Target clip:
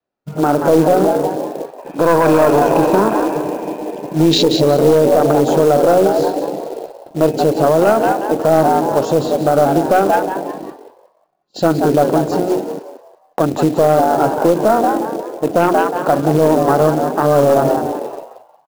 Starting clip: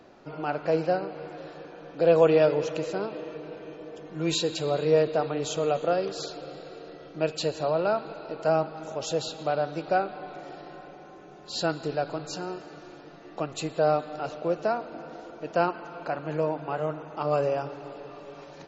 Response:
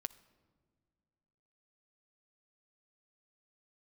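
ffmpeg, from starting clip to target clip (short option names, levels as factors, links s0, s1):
-filter_complex "[0:a]adynamicequalizer=threshold=0.00708:dfrequency=270:dqfactor=1.4:tfrequency=270:tqfactor=1.4:attack=5:release=100:ratio=0.375:range=4:mode=boostabove:tftype=bell,bandreject=f=60:t=h:w=6,bandreject=f=120:t=h:w=6,bandreject=f=180:t=h:w=6,bandreject=f=240:t=h:w=6,bandreject=f=300:t=h:w=6,bandreject=f=360:t=h:w=6,bandreject=f=420:t=h:w=6,afwtdn=0.0282,agate=range=0.0316:threshold=0.00355:ratio=16:detection=peak,asplit=5[s0][s1][s2][s3][s4];[s1]adelay=180,afreqshift=100,volume=0.335[s5];[s2]adelay=360,afreqshift=200,volume=0.107[s6];[s3]adelay=540,afreqshift=300,volume=0.0343[s7];[s4]adelay=720,afreqshift=400,volume=0.011[s8];[s0][s5][s6][s7][s8]amix=inputs=5:normalize=0,aeval=exprs='(tanh(3.55*val(0)+0.25)-tanh(0.25))/3.55':c=same,asettb=1/sr,asplit=3[s9][s10][s11];[s9]atrim=end=1.784[s12];[s10]atrim=start=1.78:end=4.26,asetpts=PTS-STARTPTS,afade=t=in:d=0.004:c=qsin,afade=t=out:st=2.476:d=0.004:c=qsin,equalizer=f=500:t=o:w=0.33:g=-5,equalizer=f=1000:t=o:w=0.33:g=10,equalizer=f=1600:t=o:w=0.33:g=7,equalizer=f=2500:t=o:w=0.33:g=11[s13];[s11]atrim=start=4.256[s14];[s12][s13]acrossfade=d=0.004:c1=hsin:c2=qsin[s15];[s15][s14]acrossfade=d=0.004:c1=qsin:c2=hsin,acrusher=bits=5:mode=log:mix=0:aa=0.000001,alimiter=level_in=11.2:limit=0.891:release=50:level=0:latency=1,volume=0.75"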